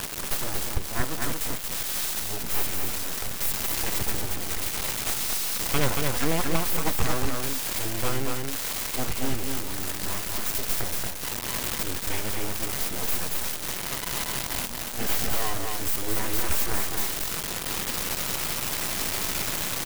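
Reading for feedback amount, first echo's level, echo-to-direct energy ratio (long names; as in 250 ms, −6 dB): repeats not evenly spaced, −3.5 dB, −3.5 dB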